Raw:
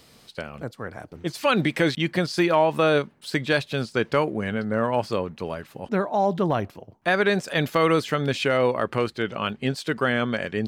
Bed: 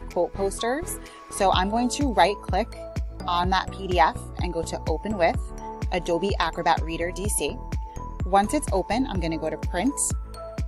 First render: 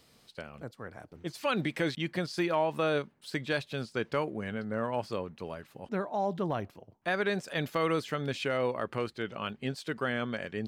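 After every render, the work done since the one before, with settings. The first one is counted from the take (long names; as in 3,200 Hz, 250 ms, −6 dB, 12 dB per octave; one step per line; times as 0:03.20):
level −9 dB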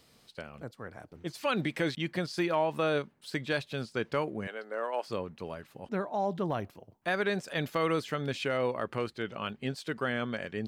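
0:04.47–0:05.08: high-pass filter 380 Hz 24 dB per octave
0:06.48–0:07.26: high-shelf EQ 9,200 Hz +5 dB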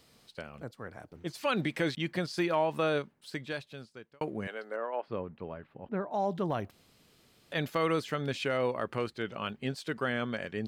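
0:02.84–0:04.21: fade out
0:04.76–0:06.11: high-frequency loss of the air 480 metres
0:06.71–0:07.52: fill with room tone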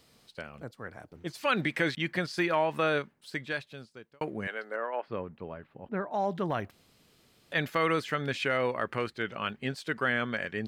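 dynamic equaliser 1,800 Hz, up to +7 dB, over −49 dBFS, Q 1.2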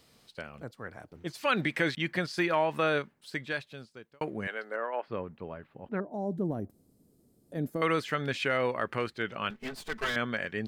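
0:06.00–0:07.82: drawn EQ curve 130 Hz 0 dB, 270 Hz +5 dB, 690 Hz −7 dB, 1,100 Hz −17 dB, 2,800 Hz −27 dB, 9,700 Hz −3 dB
0:09.50–0:10.16: lower of the sound and its delayed copy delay 4.6 ms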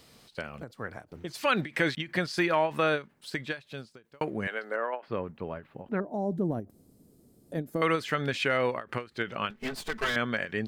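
in parallel at −1 dB: downward compressor, threshold −37 dBFS, peak gain reduction 14 dB
on the sum: every ending faded ahead of time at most 250 dB per second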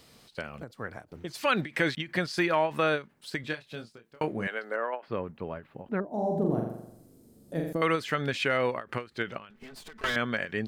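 0:03.41–0:04.47: double-tracking delay 26 ms −7 dB
0:06.07–0:07.73: flutter between parallel walls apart 7.3 metres, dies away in 0.82 s
0:09.37–0:10.04: downward compressor 20 to 1, threshold −42 dBFS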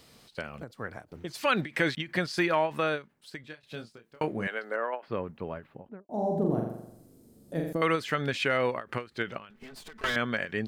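0:02.52–0:03.63: fade out, to −14.5 dB
0:05.62–0:06.09: fade out and dull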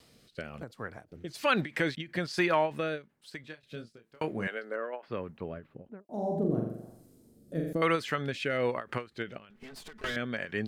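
rotating-speaker cabinet horn 1.1 Hz
tape wow and flutter 28 cents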